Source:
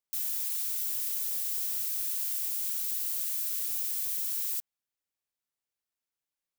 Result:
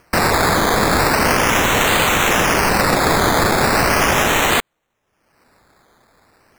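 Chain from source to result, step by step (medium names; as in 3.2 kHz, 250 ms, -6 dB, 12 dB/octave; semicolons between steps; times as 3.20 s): resonant high shelf 3 kHz +10.5 dB, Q 3; upward compressor, threshold -45 dBFS; decimation with a swept rate 12×, swing 60% 0.38 Hz; trim +6 dB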